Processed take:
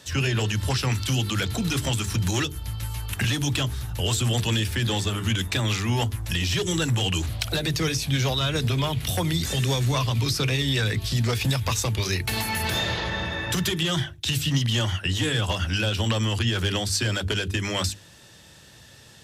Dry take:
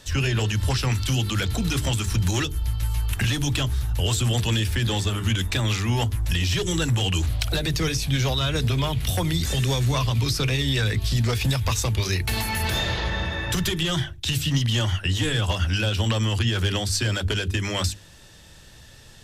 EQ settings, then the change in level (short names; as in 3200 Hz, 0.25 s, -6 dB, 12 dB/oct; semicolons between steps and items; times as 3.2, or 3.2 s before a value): HPF 95 Hz 12 dB/oct; 0.0 dB